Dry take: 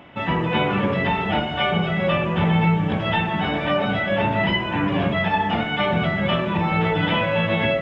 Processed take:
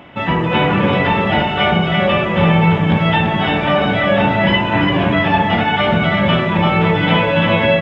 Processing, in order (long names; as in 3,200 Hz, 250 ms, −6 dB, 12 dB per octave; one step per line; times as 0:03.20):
single-tap delay 339 ms −4.5 dB
level +5.5 dB